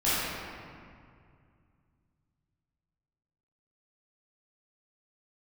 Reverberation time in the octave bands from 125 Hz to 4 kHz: 3.6 s, 2.9 s, 2.3 s, 2.2 s, 1.9 s, 1.3 s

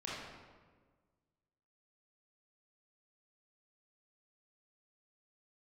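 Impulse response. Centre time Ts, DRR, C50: 98 ms, -7.0 dB, -2.5 dB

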